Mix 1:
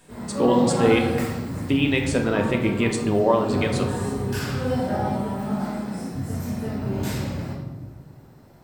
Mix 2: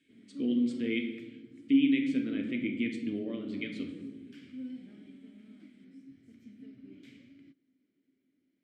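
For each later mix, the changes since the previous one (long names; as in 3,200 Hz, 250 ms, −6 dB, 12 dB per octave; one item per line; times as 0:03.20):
background: send off
master: add formant filter i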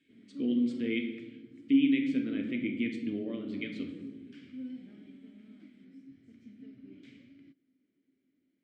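master: add high-frequency loss of the air 54 metres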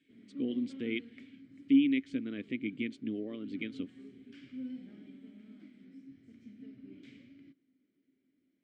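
reverb: off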